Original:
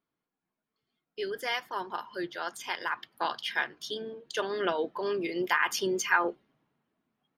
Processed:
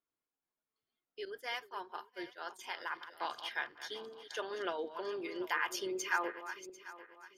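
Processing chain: backward echo that repeats 372 ms, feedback 52%, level -11.5 dB; 1.25–2.59 s: expander -33 dBFS; peaking EQ 180 Hz -12 dB 0.68 oct; trim -8 dB

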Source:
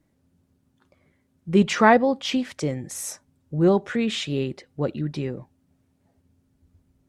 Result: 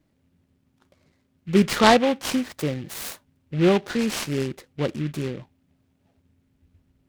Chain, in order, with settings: delay time shaken by noise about 2.1 kHz, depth 0.072 ms

